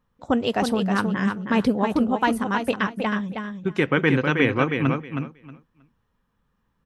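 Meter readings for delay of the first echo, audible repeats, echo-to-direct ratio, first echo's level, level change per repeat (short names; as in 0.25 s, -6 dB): 0.317 s, 2, -6.0 dB, -6.0 dB, -15.0 dB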